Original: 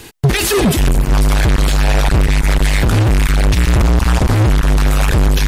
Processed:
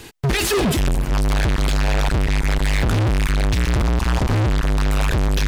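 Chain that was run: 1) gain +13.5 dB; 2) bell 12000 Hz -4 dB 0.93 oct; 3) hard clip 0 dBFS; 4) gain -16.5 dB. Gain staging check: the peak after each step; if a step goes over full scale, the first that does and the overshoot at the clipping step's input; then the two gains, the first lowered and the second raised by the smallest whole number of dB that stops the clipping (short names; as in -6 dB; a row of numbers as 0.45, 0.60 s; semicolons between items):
+7.0, +6.5, 0.0, -16.5 dBFS; step 1, 6.5 dB; step 1 +6.5 dB, step 4 -9.5 dB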